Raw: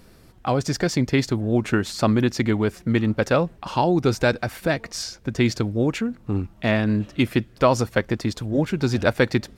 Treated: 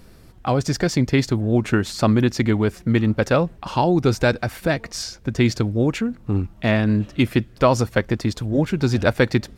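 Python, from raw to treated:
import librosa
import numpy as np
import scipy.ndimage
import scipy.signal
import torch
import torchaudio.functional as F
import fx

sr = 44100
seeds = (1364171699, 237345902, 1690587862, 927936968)

y = fx.low_shelf(x, sr, hz=120.0, db=5.0)
y = y * 10.0 ** (1.0 / 20.0)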